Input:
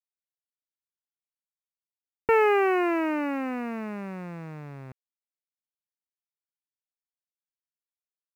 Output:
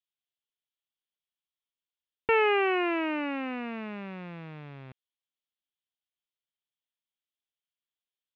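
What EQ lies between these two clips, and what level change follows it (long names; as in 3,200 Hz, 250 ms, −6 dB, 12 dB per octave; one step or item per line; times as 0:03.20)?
low-pass with resonance 3,300 Hz, resonance Q 4.9
−4.0 dB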